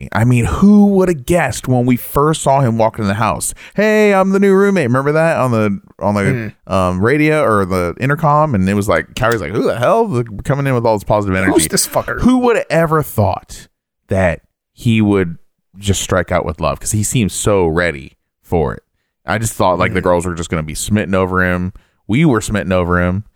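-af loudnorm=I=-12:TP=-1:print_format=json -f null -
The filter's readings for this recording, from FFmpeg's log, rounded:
"input_i" : "-14.4",
"input_tp" : "-0.8",
"input_lra" : "3.6",
"input_thresh" : "-24.7",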